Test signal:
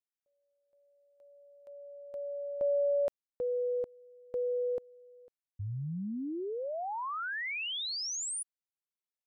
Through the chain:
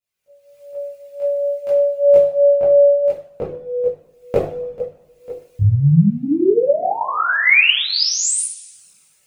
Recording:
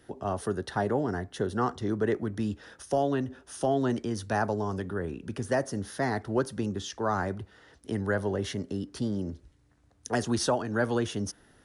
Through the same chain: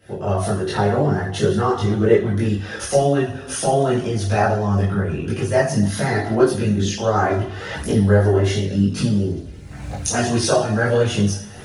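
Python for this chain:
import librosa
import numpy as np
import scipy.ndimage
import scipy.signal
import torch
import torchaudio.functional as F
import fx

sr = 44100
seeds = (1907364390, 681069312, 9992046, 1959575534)

y = fx.recorder_agc(x, sr, target_db=-25.0, rise_db_per_s=44.0, max_gain_db=24)
y = fx.graphic_eq_31(y, sr, hz=(160, 630, 2500), db=(8, 4, 6))
y = fx.rev_double_slope(y, sr, seeds[0], early_s=0.45, late_s=1.6, knee_db=-18, drr_db=-5.0)
y = fx.chorus_voices(y, sr, voices=4, hz=0.49, base_ms=20, depth_ms=1.5, mix_pct=60)
y = F.gain(torch.from_numpy(y), 5.5).numpy()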